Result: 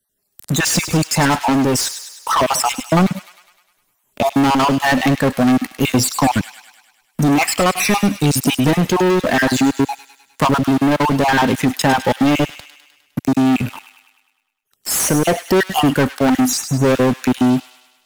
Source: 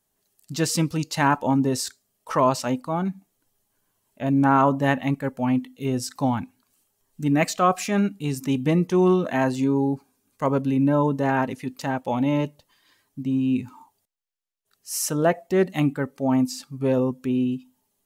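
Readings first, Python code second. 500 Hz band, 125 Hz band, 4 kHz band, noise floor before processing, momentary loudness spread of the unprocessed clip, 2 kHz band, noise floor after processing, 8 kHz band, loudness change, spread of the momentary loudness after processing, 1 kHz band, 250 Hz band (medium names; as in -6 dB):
+5.5 dB, +6.0 dB, +13.5 dB, -74 dBFS, 9 LU, +11.0 dB, -67 dBFS, +12.0 dB, +7.0 dB, 6 LU, +7.5 dB, +6.5 dB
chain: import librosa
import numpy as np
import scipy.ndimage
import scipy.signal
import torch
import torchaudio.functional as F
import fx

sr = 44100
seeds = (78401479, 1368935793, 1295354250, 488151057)

p1 = fx.spec_dropout(x, sr, seeds[0], share_pct=39)
p2 = fx.high_shelf(p1, sr, hz=5500.0, db=6.0)
p3 = fx.leveller(p2, sr, passes=5)
p4 = fx.rider(p3, sr, range_db=10, speed_s=0.5)
p5 = p4 + fx.echo_wet_highpass(p4, sr, ms=102, feedback_pct=50, hz=1900.0, wet_db=-10.0, dry=0)
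p6 = fx.band_squash(p5, sr, depth_pct=40)
y = p6 * librosa.db_to_amplitude(-1.0)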